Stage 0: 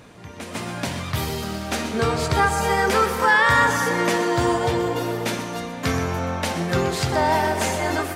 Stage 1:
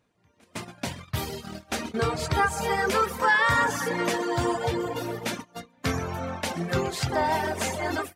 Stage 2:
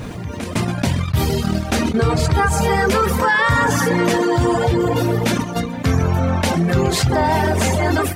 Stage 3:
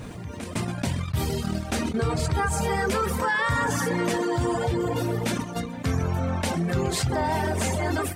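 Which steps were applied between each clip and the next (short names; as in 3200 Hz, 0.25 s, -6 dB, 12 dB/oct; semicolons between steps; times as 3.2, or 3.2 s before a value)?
reverb removal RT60 0.85 s; gate -30 dBFS, range -21 dB; gain -3.5 dB
low shelf 240 Hz +12 dB; fast leveller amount 70%
bell 8500 Hz +5 dB 0.4 oct; gain -8.5 dB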